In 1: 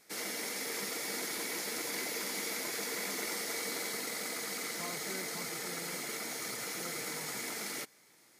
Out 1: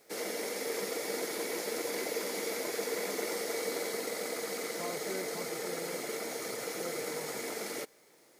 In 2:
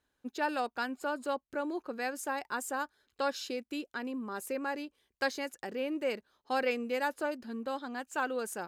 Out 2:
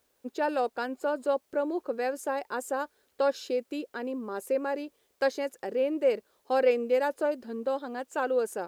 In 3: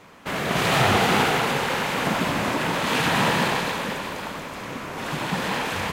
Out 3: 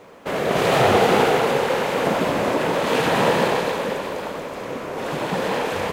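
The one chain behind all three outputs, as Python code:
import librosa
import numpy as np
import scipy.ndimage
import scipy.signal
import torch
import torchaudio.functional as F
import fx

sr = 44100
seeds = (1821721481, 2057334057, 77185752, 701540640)

y = fx.quant_dither(x, sr, seeds[0], bits=12, dither='triangular')
y = fx.peak_eq(y, sr, hz=490.0, db=11.5, octaves=1.3)
y = y * librosa.db_to_amplitude(-2.0)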